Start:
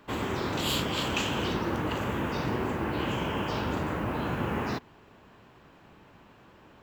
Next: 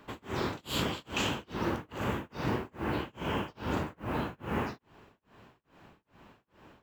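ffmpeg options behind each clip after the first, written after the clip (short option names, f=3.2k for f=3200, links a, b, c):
-af "tremolo=f=2.4:d=0.99"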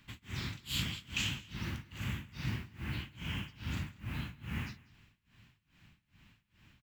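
-af "firequalizer=gain_entry='entry(120,0);entry(440,-24);entry(2100,-1)':delay=0.05:min_phase=1,aecho=1:1:192:0.0794"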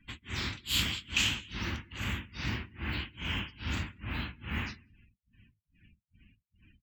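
-af "afftdn=nr=35:nf=-61,equalizer=f=140:t=o:w=1:g=-10.5,volume=7dB"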